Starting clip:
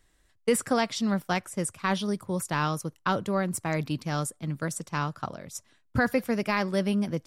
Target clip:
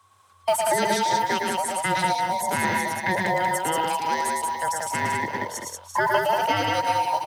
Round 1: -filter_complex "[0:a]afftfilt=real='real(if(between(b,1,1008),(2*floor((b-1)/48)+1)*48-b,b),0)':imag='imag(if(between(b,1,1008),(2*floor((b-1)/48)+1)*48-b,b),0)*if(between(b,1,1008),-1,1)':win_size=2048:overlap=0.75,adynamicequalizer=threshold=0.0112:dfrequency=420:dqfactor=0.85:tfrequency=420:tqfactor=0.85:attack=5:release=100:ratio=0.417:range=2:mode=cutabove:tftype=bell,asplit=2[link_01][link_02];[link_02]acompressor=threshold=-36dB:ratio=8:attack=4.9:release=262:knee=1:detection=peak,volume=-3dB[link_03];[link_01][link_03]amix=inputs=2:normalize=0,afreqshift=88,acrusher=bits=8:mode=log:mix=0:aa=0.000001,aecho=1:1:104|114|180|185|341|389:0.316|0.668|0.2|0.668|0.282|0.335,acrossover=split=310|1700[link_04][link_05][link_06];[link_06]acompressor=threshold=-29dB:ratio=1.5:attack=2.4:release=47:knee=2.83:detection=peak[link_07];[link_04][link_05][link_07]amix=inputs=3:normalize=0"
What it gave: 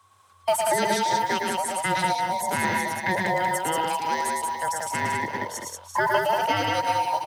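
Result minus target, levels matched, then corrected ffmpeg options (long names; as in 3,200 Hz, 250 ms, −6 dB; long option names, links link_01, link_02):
downward compressor: peak gain reduction +5 dB
-filter_complex "[0:a]afftfilt=real='real(if(between(b,1,1008),(2*floor((b-1)/48)+1)*48-b,b),0)':imag='imag(if(between(b,1,1008),(2*floor((b-1)/48)+1)*48-b,b),0)*if(between(b,1,1008),-1,1)':win_size=2048:overlap=0.75,adynamicequalizer=threshold=0.0112:dfrequency=420:dqfactor=0.85:tfrequency=420:tqfactor=0.85:attack=5:release=100:ratio=0.417:range=2:mode=cutabove:tftype=bell,asplit=2[link_01][link_02];[link_02]acompressor=threshold=-30dB:ratio=8:attack=4.9:release=262:knee=1:detection=peak,volume=-3dB[link_03];[link_01][link_03]amix=inputs=2:normalize=0,afreqshift=88,acrusher=bits=8:mode=log:mix=0:aa=0.000001,aecho=1:1:104|114|180|185|341|389:0.316|0.668|0.2|0.668|0.282|0.335,acrossover=split=310|1700[link_04][link_05][link_06];[link_06]acompressor=threshold=-29dB:ratio=1.5:attack=2.4:release=47:knee=2.83:detection=peak[link_07];[link_04][link_05][link_07]amix=inputs=3:normalize=0"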